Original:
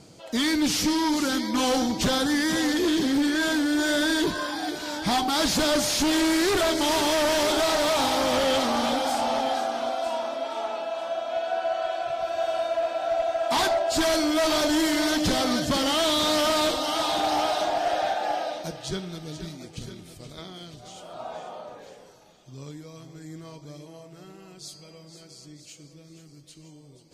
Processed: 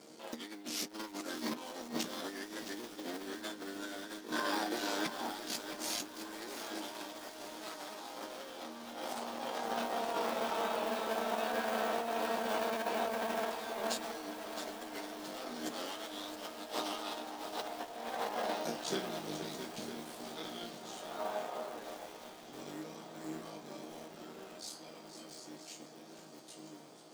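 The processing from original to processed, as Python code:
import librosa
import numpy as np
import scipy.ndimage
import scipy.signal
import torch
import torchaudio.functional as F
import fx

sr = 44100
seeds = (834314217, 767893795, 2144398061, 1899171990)

y = fx.cycle_switch(x, sr, every=3, mode='muted')
y = scipy.signal.sosfilt(scipy.signal.butter(4, 200.0, 'highpass', fs=sr, output='sos'), y)
y = fx.high_shelf(y, sr, hz=3900.0, db=-3.5)
y = fx.resonator_bank(y, sr, root=39, chord='sus4', decay_s=0.23)
y = fx.over_compress(y, sr, threshold_db=-42.0, ratio=-0.5)
y = fx.high_shelf(y, sr, hz=12000.0, db=9.0)
y = fx.echo_diffused(y, sr, ms=1926, feedback_pct=67, wet_db=-14.5)
y = fx.echo_crushed(y, sr, ms=667, feedback_pct=55, bits=8, wet_db=-9)
y = F.gain(torch.from_numpy(y), 3.0).numpy()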